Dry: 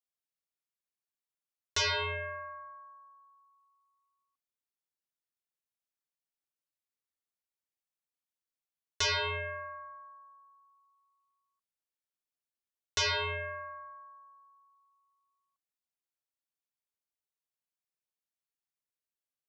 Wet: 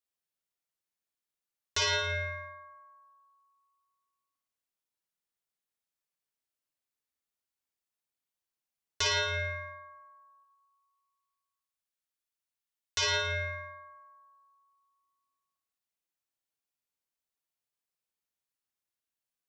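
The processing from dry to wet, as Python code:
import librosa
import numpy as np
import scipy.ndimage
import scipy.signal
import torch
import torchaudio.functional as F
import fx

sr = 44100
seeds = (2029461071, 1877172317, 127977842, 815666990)

y = fx.peak_eq(x, sr, hz=290.0, db=-8.5, octaves=2.7, at=(10.43, 13.01), fade=0.02)
y = fx.room_flutter(y, sr, wall_m=9.5, rt60_s=0.69)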